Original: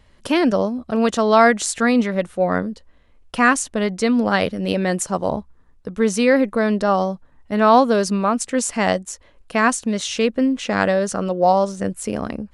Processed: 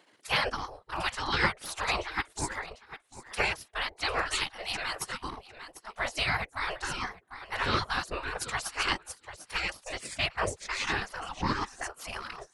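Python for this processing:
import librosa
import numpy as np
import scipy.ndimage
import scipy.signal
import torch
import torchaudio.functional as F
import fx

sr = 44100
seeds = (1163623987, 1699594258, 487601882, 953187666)

y = fx.echo_feedback(x, sr, ms=748, feedback_pct=16, wet_db=-13.0)
y = fx.transient(y, sr, attack_db=0, sustain_db=-12)
y = fx.whisperise(y, sr, seeds[0])
y = 10.0 ** (-1.5 / 20.0) * np.tanh(y / 10.0 ** (-1.5 / 20.0))
y = fx.spec_gate(y, sr, threshold_db=-15, keep='weak')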